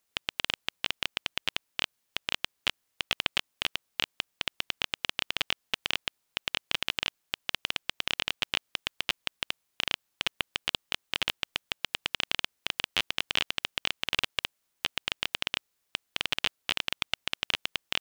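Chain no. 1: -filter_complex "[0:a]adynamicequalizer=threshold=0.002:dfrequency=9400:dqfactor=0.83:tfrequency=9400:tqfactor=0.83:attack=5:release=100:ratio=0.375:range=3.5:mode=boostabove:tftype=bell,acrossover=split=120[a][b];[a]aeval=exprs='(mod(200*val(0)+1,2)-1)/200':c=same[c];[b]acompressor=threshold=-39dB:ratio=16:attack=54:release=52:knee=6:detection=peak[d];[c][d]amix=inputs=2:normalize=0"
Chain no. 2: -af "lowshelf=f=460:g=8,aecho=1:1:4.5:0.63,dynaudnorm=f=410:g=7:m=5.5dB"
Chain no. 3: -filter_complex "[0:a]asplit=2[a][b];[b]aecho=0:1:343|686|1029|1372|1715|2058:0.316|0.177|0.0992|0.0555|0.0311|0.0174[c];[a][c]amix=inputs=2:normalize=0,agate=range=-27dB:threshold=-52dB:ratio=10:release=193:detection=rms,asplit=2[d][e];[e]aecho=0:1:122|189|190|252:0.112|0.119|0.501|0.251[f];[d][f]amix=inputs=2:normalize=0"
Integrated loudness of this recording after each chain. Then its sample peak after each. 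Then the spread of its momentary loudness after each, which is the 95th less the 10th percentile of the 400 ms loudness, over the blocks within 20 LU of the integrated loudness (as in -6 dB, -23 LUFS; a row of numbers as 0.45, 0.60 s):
-31.5, -27.5, -30.0 LUFS; -4.0, -1.5, -3.5 dBFS; 5, 7, 4 LU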